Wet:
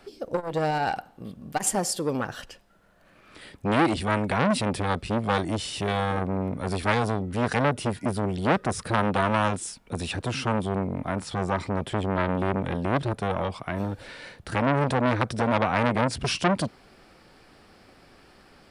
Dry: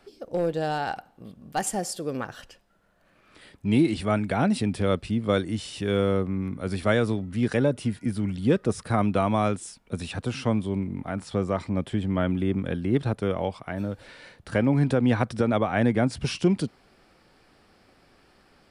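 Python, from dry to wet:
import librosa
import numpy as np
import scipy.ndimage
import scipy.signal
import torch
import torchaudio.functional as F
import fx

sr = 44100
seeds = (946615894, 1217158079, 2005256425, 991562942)

y = fx.transformer_sat(x, sr, knee_hz=1300.0)
y = y * librosa.db_to_amplitude(5.0)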